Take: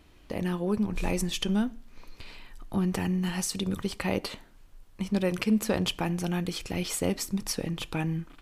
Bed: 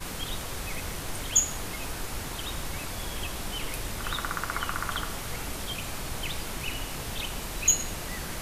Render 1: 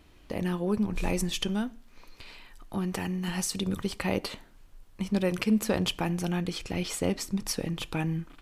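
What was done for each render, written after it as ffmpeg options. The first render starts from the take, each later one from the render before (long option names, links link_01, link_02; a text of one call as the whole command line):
ffmpeg -i in.wav -filter_complex "[0:a]asettb=1/sr,asplit=3[link_01][link_02][link_03];[link_01]atrim=end=1.484[link_04];[link_02]atrim=start=1.48:end=3.28,asetpts=PTS-STARTPTS,afade=type=in:duration=0.004:curve=qsin,afade=type=out:start_time=1.796:duration=0.004:curve=qsin,lowshelf=frequency=330:gain=-5.5[link_05];[link_03]atrim=start=3.276[link_06];[link_04][link_05]acrossfade=duration=0.004:curve1=hsin:curve2=qsin[link_07];[link_07][link_06]acrossfade=duration=0.004:curve1=qsin:curve2=hsin,asettb=1/sr,asplit=3[link_08][link_09][link_10];[link_08]atrim=end=6.324[link_11];[link_09]atrim=start=6.32:end=7.45,asetpts=PTS-STARTPTS,afade=type=in:duration=0.004:curve=qsin,afade=type=out:start_time=1.126:duration=0.004:curve=qsin,highshelf=frequency=11000:gain=-10[link_12];[link_10]atrim=start=7.446[link_13];[link_11][link_12]acrossfade=duration=0.004:curve1=hsin:curve2=qsin[link_14];[link_14][link_13]acrossfade=duration=0.004:curve1=qsin:curve2=hsin" out.wav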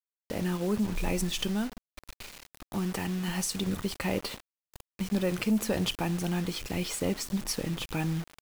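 ffmpeg -i in.wav -af "acrusher=bits=6:mix=0:aa=0.000001,asoftclip=type=tanh:threshold=-18dB" out.wav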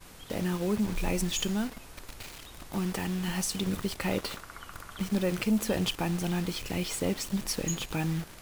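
ffmpeg -i in.wav -i bed.wav -filter_complex "[1:a]volume=-14dB[link_01];[0:a][link_01]amix=inputs=2:normalize=0" out.wav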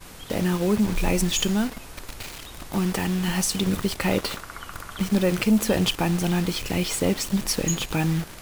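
ffmpeg -i in.wav -af "volume=7dB" out.wav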